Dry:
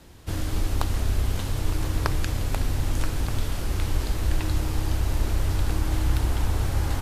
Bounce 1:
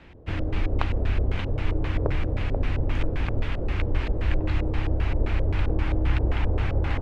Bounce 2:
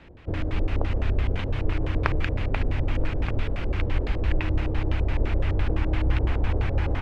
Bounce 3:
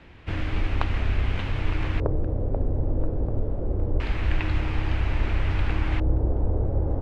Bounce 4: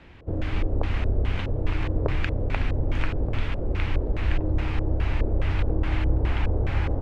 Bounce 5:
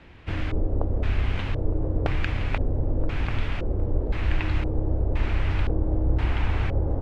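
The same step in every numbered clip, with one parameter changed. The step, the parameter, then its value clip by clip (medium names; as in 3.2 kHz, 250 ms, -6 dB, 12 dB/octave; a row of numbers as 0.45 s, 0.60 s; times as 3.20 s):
LFO low-pass, rate: 3.8 Hz, 5.9 Hz, 0.25 Hz, 2.4 Hz, 0.97 Hz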